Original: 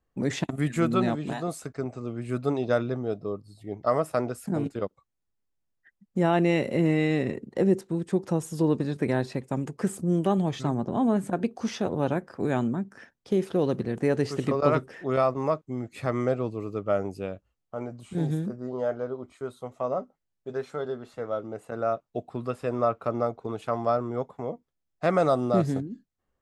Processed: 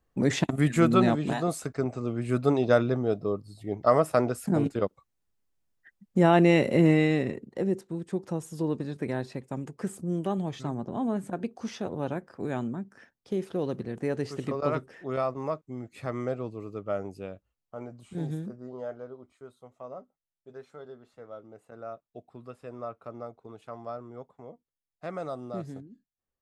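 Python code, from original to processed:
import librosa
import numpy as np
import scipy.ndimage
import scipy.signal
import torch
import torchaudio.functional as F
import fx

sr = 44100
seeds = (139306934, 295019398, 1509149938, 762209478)

y = fx.gain(x, sr, db=fx.line((6.9, 3.0), (7.56, -5.5), (18.36, -5.5), (19.57, -13.0)))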